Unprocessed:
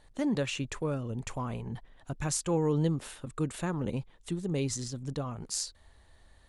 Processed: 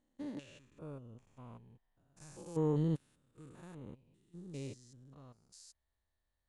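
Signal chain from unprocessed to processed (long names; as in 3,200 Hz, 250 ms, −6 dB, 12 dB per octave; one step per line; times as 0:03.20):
spectrum averaged block by block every 200 ms
expander for the loud parts 2.5 to 1, over −42 dBFS
level −3 dB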